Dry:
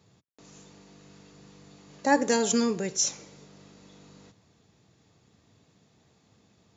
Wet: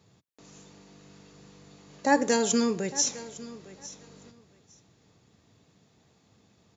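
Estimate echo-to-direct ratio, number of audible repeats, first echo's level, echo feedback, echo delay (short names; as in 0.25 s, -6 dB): -17.5 dB, 2, -17.5 dB, 17%, 0.856 s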